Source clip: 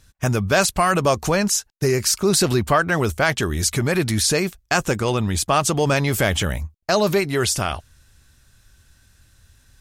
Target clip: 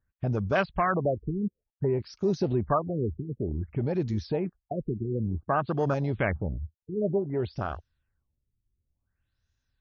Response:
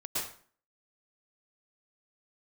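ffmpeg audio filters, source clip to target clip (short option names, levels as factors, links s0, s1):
-af "afwtdn=0.0891,afftfilt=real='re*lt(b*sr/1024,420*pow(7100/420,0.5+0.5*sin(2*PI*0.55*pts/sr)))':imag='im*lt(b*sr/1024,420*pow(7100/420,0.5+0.5*sin(2*PI*0.55*pts/sr)))':win_size=1024:overlap=0.75,volume=0.447"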